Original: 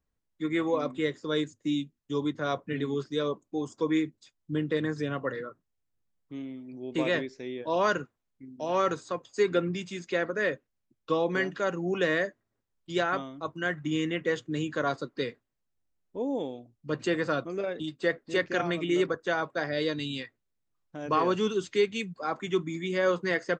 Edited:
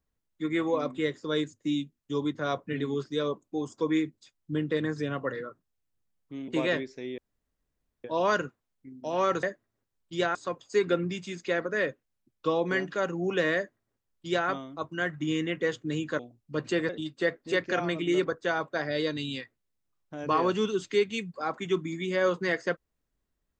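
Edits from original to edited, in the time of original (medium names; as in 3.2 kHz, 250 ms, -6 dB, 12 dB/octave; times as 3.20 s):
6.48–6.90 s: delete
7.60 s: insert room tone 0.86 s
12.20–13.12 s: copy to 8.99 s
14.83–16.54 s: delete
17.24–17.71 s: delete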